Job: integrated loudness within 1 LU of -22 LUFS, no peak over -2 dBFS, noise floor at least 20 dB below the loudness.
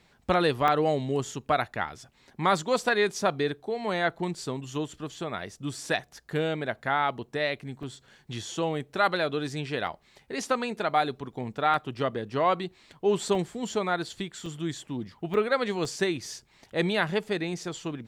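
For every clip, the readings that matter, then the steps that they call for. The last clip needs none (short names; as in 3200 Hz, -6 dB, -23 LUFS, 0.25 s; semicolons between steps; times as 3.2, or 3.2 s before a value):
dropouts 8; longest dropout 1.7 ms; loudness -29.0 LUFS; peak -11.5 dBFS; loudness target -22.0 LUFS
-> interpolate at 0.68/7.83/9.87/11.74/13.35/14.46/15.34/15.85, 1.7 ms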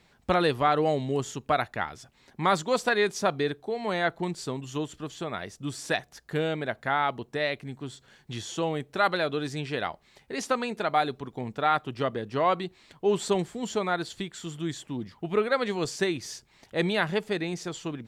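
dropouts 0; loudness -29.0 LUFS; peak -11.5 dBFS; loudness target -22.0 LUFS
-> gain +7 dB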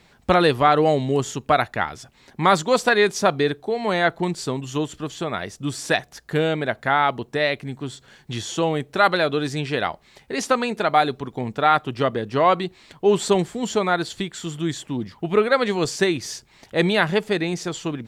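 loudness -22.0 LUFS; peak -4.5 dBFS; noise floor -56 dBFS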